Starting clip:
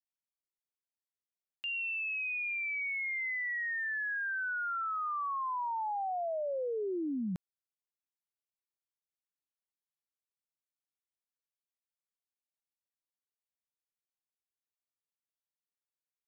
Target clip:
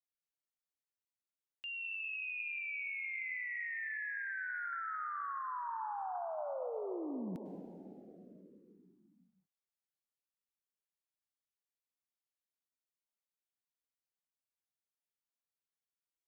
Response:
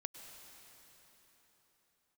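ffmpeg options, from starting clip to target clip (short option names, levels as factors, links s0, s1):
-filter_complex "[1:a]atrim=start_sample=2205[s0];[0:a][s0]afir=irnorm=-1:irlink=0,volume=0.75"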